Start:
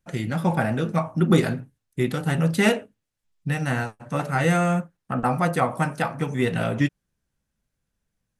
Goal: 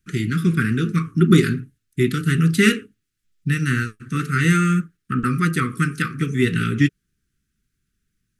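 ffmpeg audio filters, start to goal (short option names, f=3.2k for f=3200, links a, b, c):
-af "asuperstop=centerf=720:order=12:qfactor=0.91,volume=5dB"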